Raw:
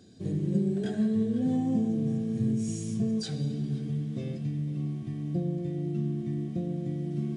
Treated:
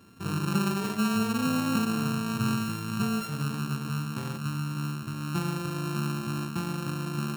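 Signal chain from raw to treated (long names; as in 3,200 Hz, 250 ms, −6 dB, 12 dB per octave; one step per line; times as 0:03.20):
samples sorted by size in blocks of 32 samples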